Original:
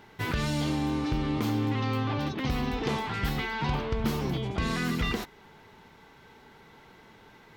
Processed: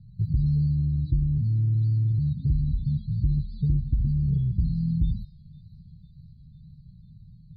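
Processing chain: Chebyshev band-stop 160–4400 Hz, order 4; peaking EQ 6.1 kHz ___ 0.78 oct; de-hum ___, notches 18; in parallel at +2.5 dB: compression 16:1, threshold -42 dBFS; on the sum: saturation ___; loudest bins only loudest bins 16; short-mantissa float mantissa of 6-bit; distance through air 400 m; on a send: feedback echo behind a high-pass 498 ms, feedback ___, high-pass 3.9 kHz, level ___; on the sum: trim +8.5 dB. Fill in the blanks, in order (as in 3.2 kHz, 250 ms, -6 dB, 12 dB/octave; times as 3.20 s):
-11.5 dB, 413.1 Hz, -22.5 dBFS, 71%, -13.5 dB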